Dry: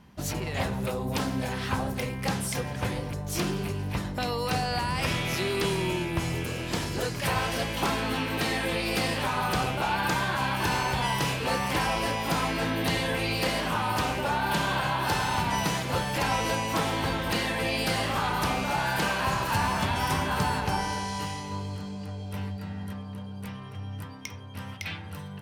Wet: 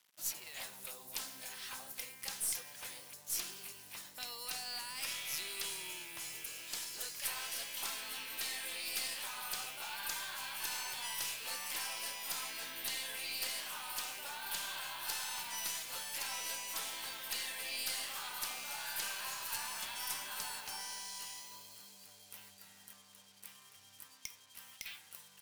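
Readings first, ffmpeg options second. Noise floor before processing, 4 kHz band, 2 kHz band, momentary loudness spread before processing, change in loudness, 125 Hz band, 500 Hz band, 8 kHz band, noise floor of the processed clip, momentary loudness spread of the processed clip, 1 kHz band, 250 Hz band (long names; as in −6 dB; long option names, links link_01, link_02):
−39 dBFS, −8.0 dB, −13.5 dB, 10 LU, −11.5 dB, −36.0 dB, −25.0 dB, −2.0 dB, −60 dBFS, 15 LU, −20.0 dB, −31.0 dB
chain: -af "acrusher=bits=7:mix=0:aa=0.5,aderivative,aeval=exprs='0.133*(cos(1*acos(clip(val(0)/0.133,-1,1)))-cos(1*PI/2))+0.00668*(cos(6*acos(clip(val(0)/0.133,-1,1)))-cos(6*PI/2))':channel_layout=same,volume=-2.5dB"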